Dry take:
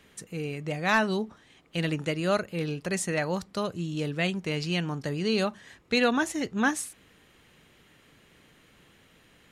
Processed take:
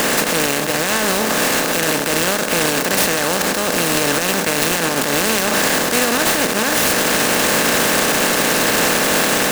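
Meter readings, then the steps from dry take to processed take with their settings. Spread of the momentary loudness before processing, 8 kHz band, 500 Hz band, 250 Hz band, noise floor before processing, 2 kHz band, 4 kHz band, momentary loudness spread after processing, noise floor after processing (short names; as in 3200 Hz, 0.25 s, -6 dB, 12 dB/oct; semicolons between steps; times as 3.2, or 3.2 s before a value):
10 LU, +23.0 dB, +12.5 dB, +9.0 dB, -60 dBFS, +15.0 dB, +18.0 dB, 3 LU, -20 dBFS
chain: per-bin compression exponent 0.2; HPF 160 Hz; AGC gain up to 5 dB; limiter -12.5 dBFS, peak gain reduction 10.5 dB; high shelf 4500 Hz +11 dB; noise-modulated delay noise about 4800 Hz, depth 0.06 ms; gain +4 dB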